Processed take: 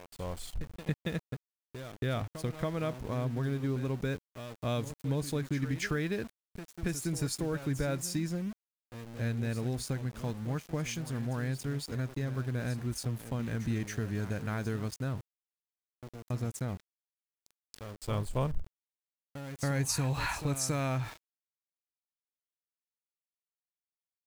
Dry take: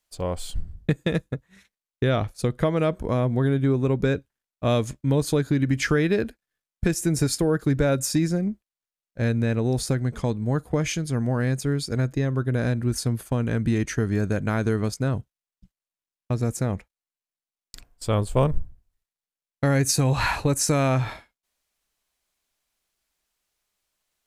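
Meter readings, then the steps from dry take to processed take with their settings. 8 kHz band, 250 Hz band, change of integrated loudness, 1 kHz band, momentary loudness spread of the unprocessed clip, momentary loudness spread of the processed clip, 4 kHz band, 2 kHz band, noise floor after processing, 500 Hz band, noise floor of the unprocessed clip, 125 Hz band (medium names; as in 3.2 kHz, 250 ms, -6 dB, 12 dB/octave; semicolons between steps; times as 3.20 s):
-9.0 dB, -11.0 dB, -10.5 dB, -10.0 dB, 9 LU, 14 LU, -8.5 dB, -9.0 dB, under -85 dBFS, -12.5 dB, under -85 dBFS, -9.5 dB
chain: pre-echo 278 ms -12.5 dB; dynamic bell 430 Hz, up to -4 dB, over -33 dBFS, Q 0.81; small samples zeroed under -35.5 dBFS; trim -9 dB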